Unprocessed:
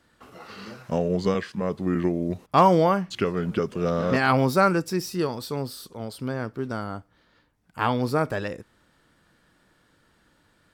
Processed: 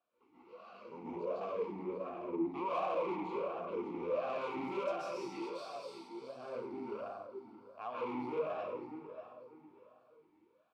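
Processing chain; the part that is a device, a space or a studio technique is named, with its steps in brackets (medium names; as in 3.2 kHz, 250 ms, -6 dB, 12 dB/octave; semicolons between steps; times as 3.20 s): 4.86–6.12 s: frequency weighting ITU-R 468; feedback delay 593 ms, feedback 34%, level -13 dB; plate-style reverb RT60 1.3 s, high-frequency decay 0.6×, pre-delay 120 ms, DRR -9 dB; talk box (valve stage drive 18 dB, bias 0.65; talking filter a-u 1.4 Hz); trim -6 dB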